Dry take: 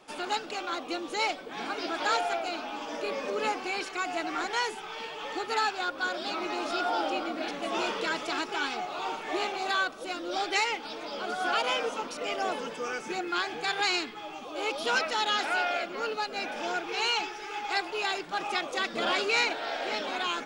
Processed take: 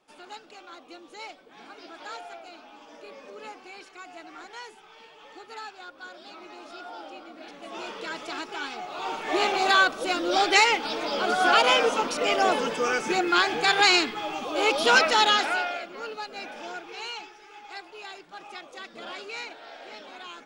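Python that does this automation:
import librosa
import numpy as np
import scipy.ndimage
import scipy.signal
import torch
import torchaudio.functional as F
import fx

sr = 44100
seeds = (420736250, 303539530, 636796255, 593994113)

y = fx.gain(x, sr, db=fx.line((7.26, -12.0), (8.25, -3.0), (8.77, -3.0), (9.54, 8.5), (15.24, 8.5), (15.81, -4.0), (16.48, -4.0), (17.47, -11.0)))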